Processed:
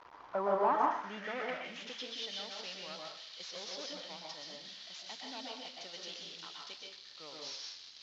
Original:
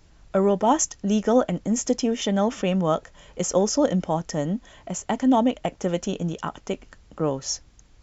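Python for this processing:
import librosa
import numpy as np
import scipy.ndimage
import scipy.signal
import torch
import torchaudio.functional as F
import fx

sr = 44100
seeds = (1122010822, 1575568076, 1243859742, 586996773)

y = fx.delta_mod(x, sr, bps=32000, step_db=-35.0)
y = fx.filter_sweep_bandpass(y, sr, from_hz=990.0, to_hz=4200.0, start_s=0.51, end_s=2.19, q=3.3)
y = fx.rev_plate(y, sr, seeds[0], rt60_s=0.61, hf_ratio=0.75, predelay_ms=110, drr_db=-0.5)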